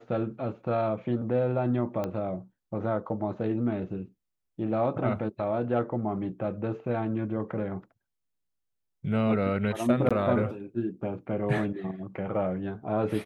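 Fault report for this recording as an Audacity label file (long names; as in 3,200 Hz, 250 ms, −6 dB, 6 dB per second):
2.040000	2.040000	click −19 dBFS
10.090000	10.110000	drop-out 16 ms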